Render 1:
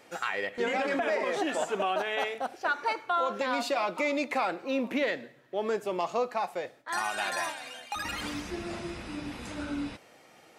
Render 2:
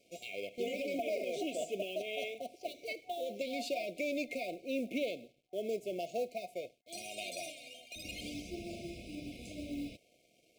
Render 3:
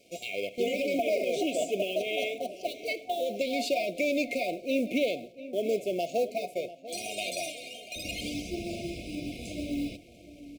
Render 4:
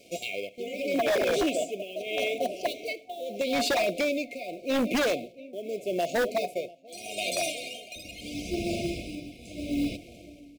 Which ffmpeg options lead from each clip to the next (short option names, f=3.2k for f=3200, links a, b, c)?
-af "aeval=exprs='sgn(val(0))*max(abs(val(0))-0.001,0)':c=same,acrusher=bits=6:mode=log:mix=0:aa=0.000001,afftfilt=real='re*(1-between(b*sr/4096,740,2100))':imag='im*(1-between(b*sr/4096,740,2100))':win_size=4096:overlap=0.75,volume=-6dB"
-filter_complex "[0:a]asplit=2[a][b];[b]adelay=694,lowpass=f=2.5k:p=1,volume=-15dB,asplit=2[c][d];[d]adelay=694,lowpass=f=2.5k:p=1,volume=0.43,asplit=2[e][f];[f]adelay=694,lowpass=f=2.5k:p=1,volume=0.43,asplit=2[g][h];[h]adelay=694,lowpass=f=2.5k:p=1,volume=0.43[i];[a][c][e][g][i]amix=inputs=5:normalize=0,volume=8dB"
-af "tremolo=f=0.8:d=0.79,aeval=exprs='0.0531*(abs(mod(val(0)/0.0531+3,4)-2)-1)':c=same,volume=6dB"